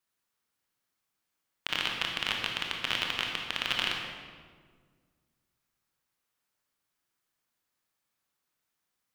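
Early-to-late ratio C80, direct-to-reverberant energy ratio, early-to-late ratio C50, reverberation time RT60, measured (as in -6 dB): 4.0 dB, 0.5 dB, 2.5 dB, 1.7 s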